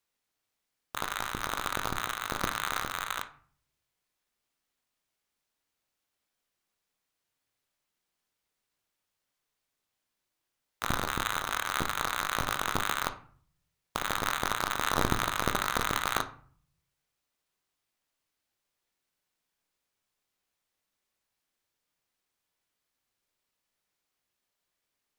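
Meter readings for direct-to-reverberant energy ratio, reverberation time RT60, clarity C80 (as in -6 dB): 8.0 dB, 0.45 s, 18.0 dB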